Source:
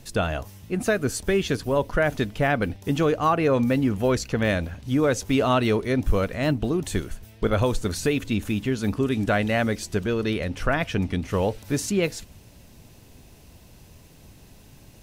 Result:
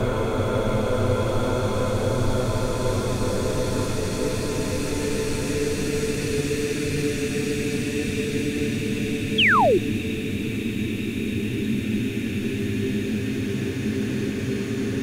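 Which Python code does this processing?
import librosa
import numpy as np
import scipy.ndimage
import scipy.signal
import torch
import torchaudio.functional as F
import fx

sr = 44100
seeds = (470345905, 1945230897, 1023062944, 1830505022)

y = fx.paulstretch(x, sr, seeds[0], factor=12.0, window_s=1.0, from_s=7.52)
y = fx.spec_paint(y, sr, seeds[1], shape='fall', start_s=9.38, length_s=0.4, low_hz=320.0, high_hz=3500.0, level_db=-17.0)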